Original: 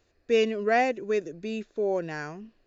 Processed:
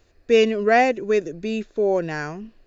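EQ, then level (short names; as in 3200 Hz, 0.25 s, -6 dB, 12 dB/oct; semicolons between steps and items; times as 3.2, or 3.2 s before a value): low shelf 60 Hz +9 dB; +6.5 dB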